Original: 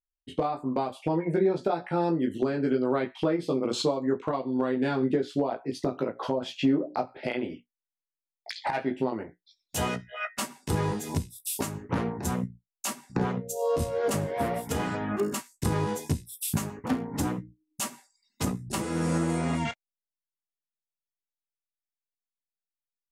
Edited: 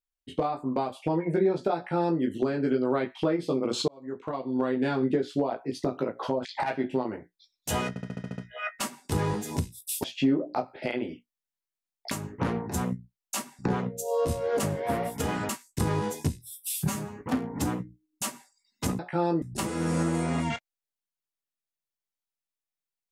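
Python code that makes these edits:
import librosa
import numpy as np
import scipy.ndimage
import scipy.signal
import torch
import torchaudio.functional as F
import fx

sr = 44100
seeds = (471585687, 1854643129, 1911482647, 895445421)

y = fx.edit(x, sr, fx.duplicate(start_s=1.77, length_s=0.43, to_s=18.57),
    fx.fade_in_span(start_s=3.88, length_s=0.69),
    fx.move(start_s=6.45, length_s=2.07, to_s=11.62),
    fx.stutter(start_s=9.96, slice_s=0.07, count=8),
    fx.cut(start_s=15.0, length_s=0.34),
    fx.stretch_span(start_s=16.24, length_s=0.54, factor=1.5), tone=tone)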